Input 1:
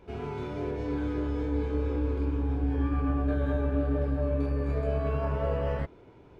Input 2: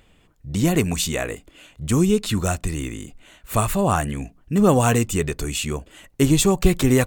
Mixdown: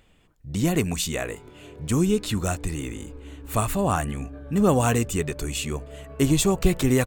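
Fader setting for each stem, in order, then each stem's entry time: -12.5 dB, -3.5 dB; 1.05 s, 0.00 s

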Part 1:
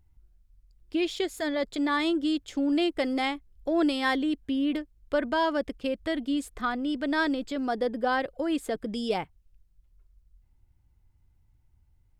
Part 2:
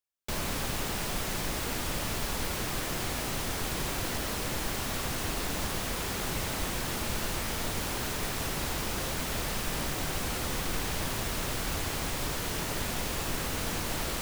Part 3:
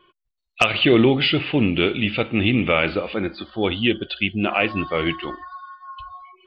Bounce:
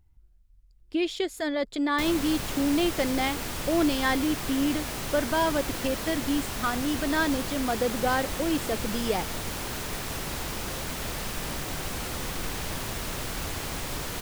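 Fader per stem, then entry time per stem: +0.5 dB, -0.5 dB, mute; 0.00 s, 1.70 s, mute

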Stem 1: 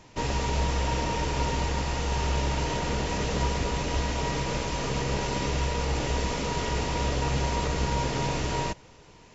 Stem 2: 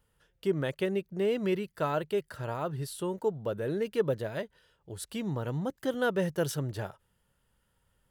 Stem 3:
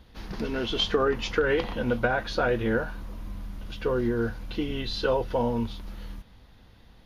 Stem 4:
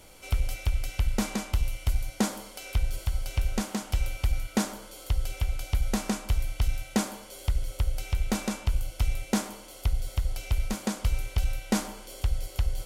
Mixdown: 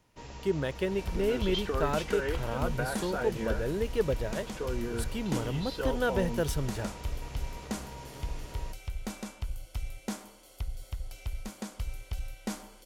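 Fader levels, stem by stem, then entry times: -17.0 dB, -0.5 dB, -9.0 dB, -9.5 dB; 0.00 s, 0.00 s, 0.75 s, 0.75 s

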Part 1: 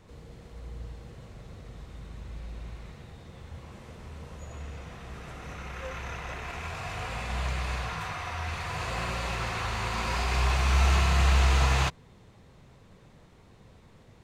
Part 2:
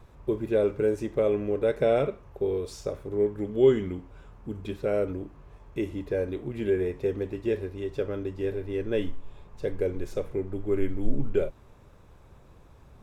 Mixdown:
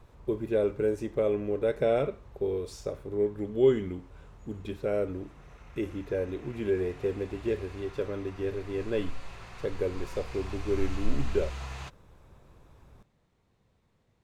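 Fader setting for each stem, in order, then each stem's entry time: -15.5 dB, -2.5 dB; 0.00 s, 0.00 s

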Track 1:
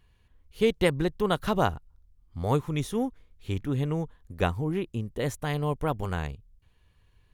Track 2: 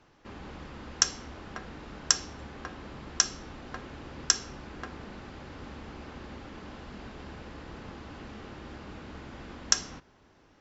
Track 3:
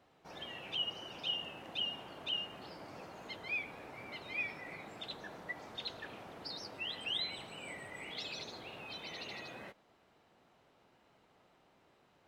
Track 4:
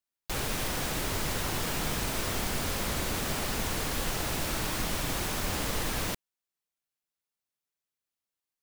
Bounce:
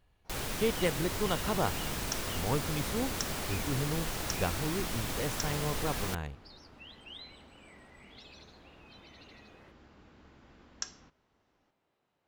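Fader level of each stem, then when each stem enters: -6.5 dB, -14.0 dB, -11.0 dB, -4.5 dB; 0.00 s, 1.10 s, 0.00 s, 0.00 s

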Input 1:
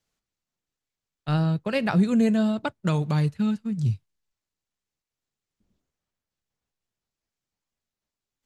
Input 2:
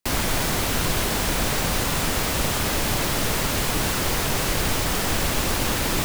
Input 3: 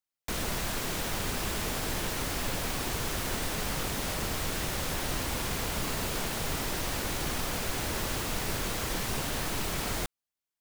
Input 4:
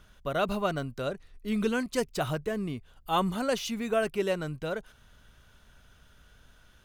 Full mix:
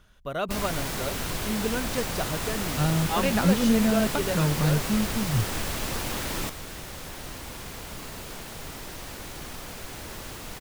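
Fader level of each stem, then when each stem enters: -1.5 dB, -8.0 dB, -6.5 dB, -1.5 dB; 1.50 s, 0.45 s, 2.15 s, 0.00 s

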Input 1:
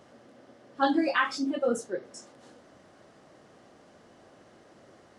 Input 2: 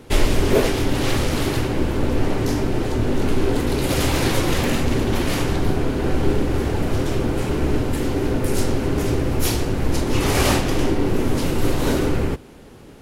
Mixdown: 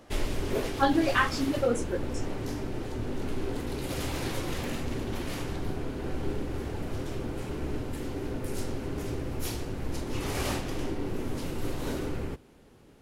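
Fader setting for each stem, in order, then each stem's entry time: +0.5 dB, -13.0 dB; 0.00 s, 0.00 s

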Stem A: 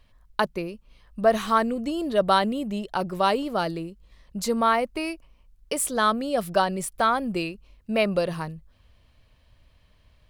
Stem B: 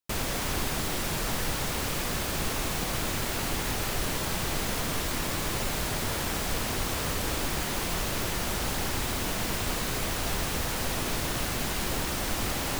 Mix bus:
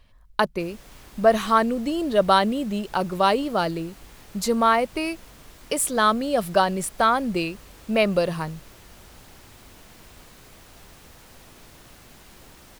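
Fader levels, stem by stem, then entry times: +2.5 dB, -18.5 dB; 0.00 s, 0.50 s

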